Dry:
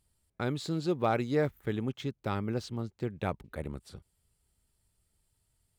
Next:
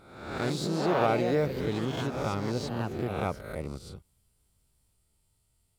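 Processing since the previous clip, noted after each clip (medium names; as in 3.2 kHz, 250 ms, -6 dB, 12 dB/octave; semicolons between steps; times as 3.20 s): reverse spectral sustain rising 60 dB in 0.93 s; band-stop 1.7 kHz, Q 6.2; ever faster or slower copies 88 ms, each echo +3 st, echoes 3, each echo -6 dB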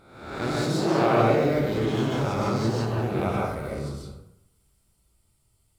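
plate-style reverb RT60 0.76 s, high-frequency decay 0.6×, pre-delay 115 ms, DRR -3.5 dB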